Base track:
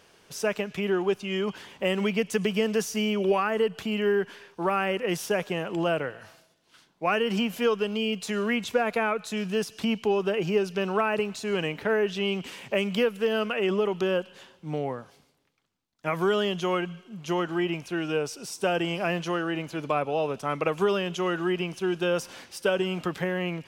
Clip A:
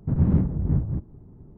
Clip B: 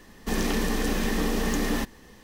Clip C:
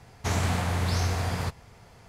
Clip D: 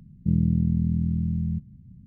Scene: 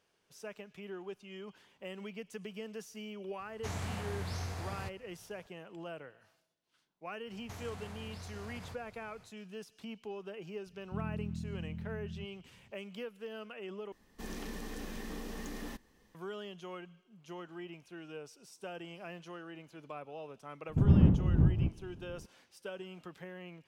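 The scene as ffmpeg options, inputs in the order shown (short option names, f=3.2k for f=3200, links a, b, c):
-filter_complex "[3:a]asplit=2[a][b];[0:a]volume=-18.5dB[c];[b]acompressor=threshold=-42dB:ratio=4:attack=29:release=51:knee=1:detection=peak[d];[c]asplit=2[e][f];[e]atrim=end=13.924[g];[2:a]atrim=end=2.23,asetpts=PTS-STARTPTS,volume=-16.5dB[h];[f]atrim=start=16.146[i];[a]atrim=end=2.08,asetpts=PTS-STARTPTS,volume=-12.5dB,afade=t=in:d=0.004:c=hsin,afade=t=out:st=2.076:d=0.004:c=hsin,adelay=3390[j];[d]atrim=end=2.08,asetpts=PTS-STARTPTS,volume=-8.5dB,afade=t=in:d=0.1,afade=t=out:st=1.98:d=0.1,adelay=7250[k];[4:a]atrim=end=2.06,asetpts=PTS-STARTPTS,volume=-17dB,afade=t=in:d=0.004:c=hsin,afade=t=out:st=2.056:d=0.004:c=hsin,adelay=470106S[l];[1:a]atrim=end=1.57,asetpts=PTS-STARTPTS,volume=-3dB,afade=t=in:d=0.004:c=hsin,afade=t=out:st=1.566:d=0.004:c=hsin,adelay=20690[m];[g][h]acrossfade=d=0.004:c1=hsin:c2=hsin[n];[n][i]acrossfade=d=0.004:c1=hsin:c2=hsin[o];[o][j][k][l][m]amix=inputs=5:normalize=0"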